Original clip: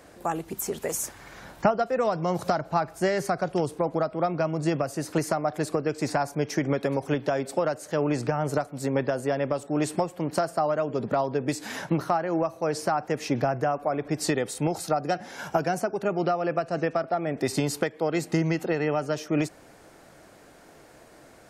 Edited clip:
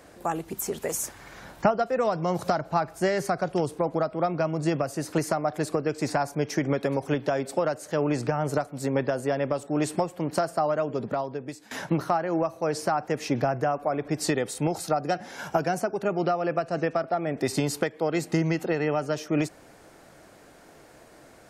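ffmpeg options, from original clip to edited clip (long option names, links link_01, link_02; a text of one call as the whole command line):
ffmpeg -i in.wav -filter_complex "[0:a]asplit=2[link_01][link_02];[link_01]atrim=end=11.71,asetpts=PTS-STARTPTS,afade=type=out:start_time=10.84:duration=0.87:silence=0.112202[link_03];[link_02]atrim=start=11.71,asetpts=PTS-STARTPTS,afade=type=in:duration=0.004:curve=hsin:silence=0.112202[link_04];[link_03][link_04]concat=n=2:v=0:a=1" out.wav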